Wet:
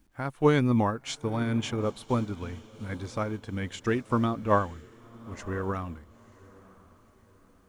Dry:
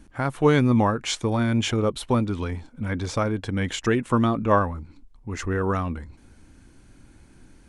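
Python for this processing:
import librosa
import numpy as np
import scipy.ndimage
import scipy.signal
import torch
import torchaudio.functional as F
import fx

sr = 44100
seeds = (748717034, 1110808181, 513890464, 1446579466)

y = fx.echo_diffused(x, sr, ms=971, feedback_pct=44, wet_db=-15.0)
y = fx.quant_dither(y, sr, seeds[0], bits=10, dither='none')
y = fx.upward_expand(y, sr, threshold_db=-38.0, expansion=1.5)
y = y * librosa.db_to_amplitude(-2.5)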